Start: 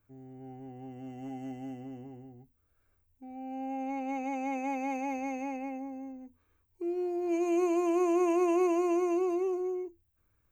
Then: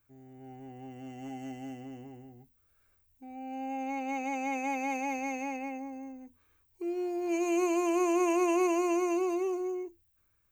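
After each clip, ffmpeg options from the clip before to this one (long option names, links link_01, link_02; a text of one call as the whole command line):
ffmpeg -i in.wav -af "tiltshelf=frequency=1200:gain=-4.5,dynaudnorm=framelen=130:gausssize=7:maxgain=3dB" out.wav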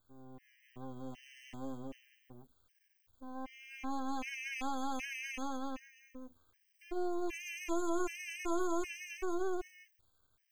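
ffmpeg -i in.wav -af "acompressor=threshold=-31dB:ratio=2.5,aeval=exprs='max(val(0),0)':channel_layout=same,afftfilt=real='re*gt(sin(2*PI*1.3*pts/sr)*(1-2*mod(floor(b*sr/1024/1600),2)),0)':imag='im*gt(sin(2*PI*1.3*pts/sr)*(1-2*mod(floor(b*sr/1024/1600),2)),0)':win_size=1024:overlap=0.75,volume=3.5dB" out.wav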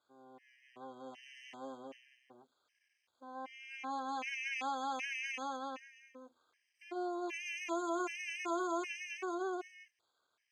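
ffmpeg -i in.wav -af "highpass=450,lowpass=5500,volume=2.5dB" out.wav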